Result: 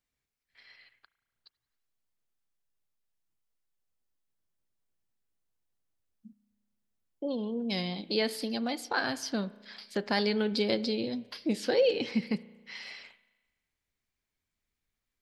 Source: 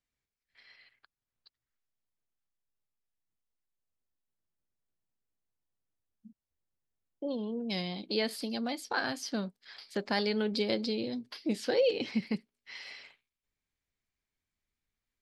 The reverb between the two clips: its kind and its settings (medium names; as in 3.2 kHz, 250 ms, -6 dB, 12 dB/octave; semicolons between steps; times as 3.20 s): spring tank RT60 1.3 s, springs 34 ms, chirp 60 ms, DRR 17 dB; trim +2 dB